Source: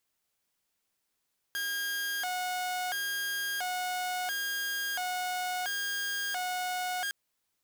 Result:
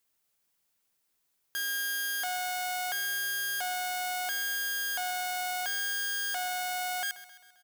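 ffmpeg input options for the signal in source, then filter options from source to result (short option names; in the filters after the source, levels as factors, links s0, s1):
-f lavfi -i "aevalsrc='0.0376*(2*mod((1175*t+445/0.73*(0.5-abs(mod(0.73*t,1)-0.5))),1)-1)':d=5.56:s=44100"
-af "highshelf=f=9800:g=6,aecho=1:1:132|264|396|528|660:0.158|0.0888|0.0497|0.0278|0.0156"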